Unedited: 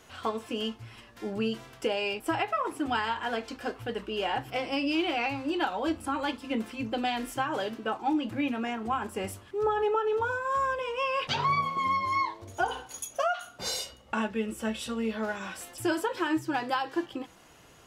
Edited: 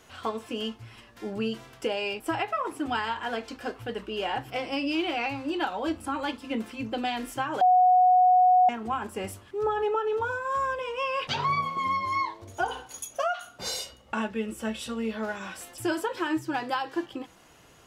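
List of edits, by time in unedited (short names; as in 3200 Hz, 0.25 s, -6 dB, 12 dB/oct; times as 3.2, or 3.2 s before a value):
7.61–8.69 bleep 733 Hz -15.5 dBFS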